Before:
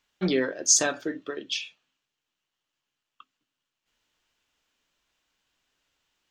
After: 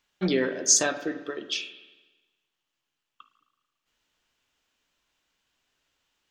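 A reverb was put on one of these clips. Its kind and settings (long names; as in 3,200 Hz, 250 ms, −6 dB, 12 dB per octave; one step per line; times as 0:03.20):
spring reverb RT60 1.2 s, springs 36/54 ms, chirp 75 ms, DRR 10 dB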